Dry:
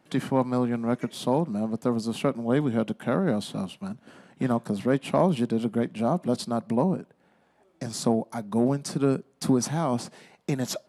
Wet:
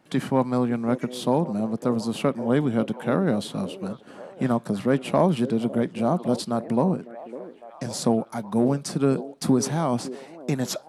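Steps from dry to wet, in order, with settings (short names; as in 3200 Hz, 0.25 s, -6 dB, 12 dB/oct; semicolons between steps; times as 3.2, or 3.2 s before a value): delay with a stepping band-pass 0.554 s, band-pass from 400 Hz, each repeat 0.7 oct, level -11 dB; gain +2 dB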